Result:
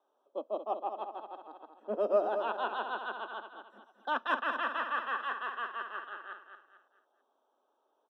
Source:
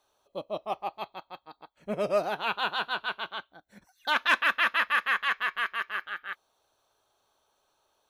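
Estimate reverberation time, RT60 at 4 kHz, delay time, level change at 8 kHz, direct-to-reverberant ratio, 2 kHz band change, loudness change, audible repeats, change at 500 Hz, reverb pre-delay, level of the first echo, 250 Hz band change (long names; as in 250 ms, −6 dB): no reverb audible, no reverb audible, 221 ms, below −20 dB, no reverb audible, −10.0 dB, −6.5 dB, 4, 0.0 dB, no reverb audible, −8.0 dB, −4.0 dB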